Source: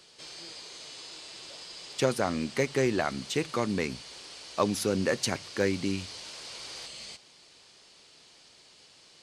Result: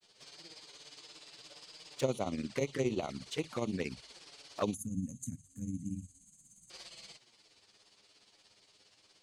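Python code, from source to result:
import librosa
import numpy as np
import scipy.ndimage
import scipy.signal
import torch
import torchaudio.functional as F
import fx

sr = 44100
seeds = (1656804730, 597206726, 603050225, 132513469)

y = fx.granulator(x, sr, seeds[0], grain_ms=90.0, per_s=17.0, spray_ms=12.0, spread_st=0)
y = fx.env_flanger(y, sr, rest_ms=11.1, full_db=-26.5)
y = fx.spec_box(y, sr, start_s=4.74, length_s=1.96, low_hz=280.0, high_hz=6200.0, gain_db=-30)
y = y * librosa.db_to_amplitude(-3.0)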